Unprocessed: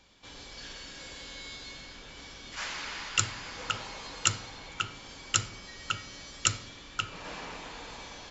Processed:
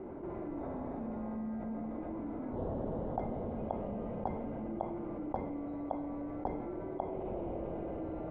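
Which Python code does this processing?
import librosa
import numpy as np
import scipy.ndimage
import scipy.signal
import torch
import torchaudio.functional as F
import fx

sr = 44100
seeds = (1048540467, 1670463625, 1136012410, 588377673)

y = fx.band_swap(x, sr, width_hz=2000)
y = scipy.signal.sosfilt(scipy.signal.cheby1(3, 1.0, 640.0, 'lowpass', fs=sr, output='sos'), y)
y = fx.env_flatten(y, sr, amount_pct=70)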